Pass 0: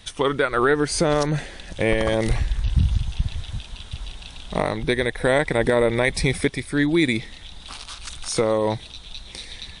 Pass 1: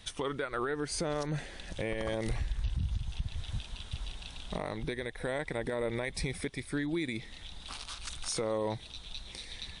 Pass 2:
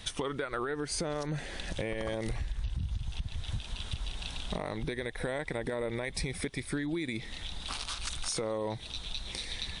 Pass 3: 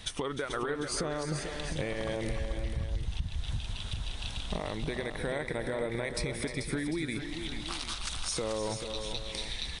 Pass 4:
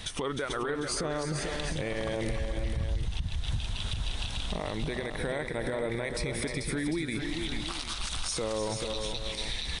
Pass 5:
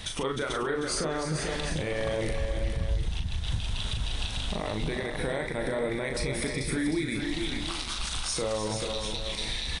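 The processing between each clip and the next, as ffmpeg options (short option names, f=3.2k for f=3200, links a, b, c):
-af "alimiter=limit=-18dB:level=0:latency=1:release=295,volume=-6dB"
-af "acompressor=threshold=-38dB:ratio=4,volume=6.5dB"
-af "aecho=1:1:305|437|748:0.266|0.398|0.224"
-af "alimiter=level_in=4dB:limit=-24dB:level=0:latency=1:release=94,volume=-4dB,volume=5.5dB"
-filter_complex "[0:a]asplit=2[a][b];[b]adelay=38,volume=-5.5dB[c];[a][c]amix=inputs=2:normalize=0,volume=1dB"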